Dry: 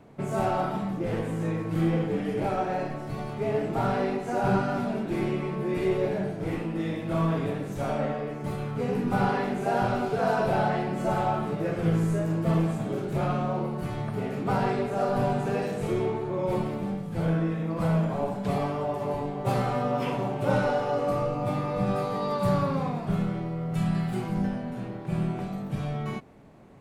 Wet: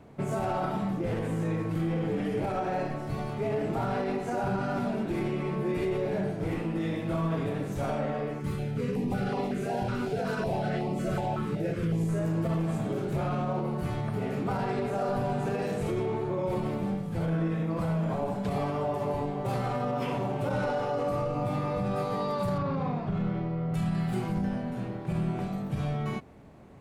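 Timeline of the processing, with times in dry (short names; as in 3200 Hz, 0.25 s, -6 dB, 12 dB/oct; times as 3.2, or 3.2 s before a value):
8.4–12.09 stepped notch 5.4 Hz 680–1600 Hz
22.58–23.74 air absorption 140 m
whole clip: bell 70 Hz +6.5 dB 0.81 oct; limiter -21.5 dBFS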